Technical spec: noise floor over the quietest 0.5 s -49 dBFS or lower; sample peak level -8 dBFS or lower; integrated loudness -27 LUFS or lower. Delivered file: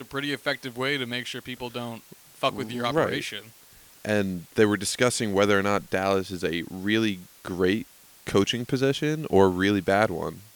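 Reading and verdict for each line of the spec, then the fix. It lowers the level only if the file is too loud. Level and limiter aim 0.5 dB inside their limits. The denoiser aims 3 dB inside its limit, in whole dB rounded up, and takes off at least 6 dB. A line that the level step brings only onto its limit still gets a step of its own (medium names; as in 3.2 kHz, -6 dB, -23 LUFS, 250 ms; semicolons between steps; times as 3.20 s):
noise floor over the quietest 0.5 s -52 dBFS: pass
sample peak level -6.0 dBFS: fail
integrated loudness -25.5 LUFS: fail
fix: trim -2 dB; peak limiter -8.5 dBFS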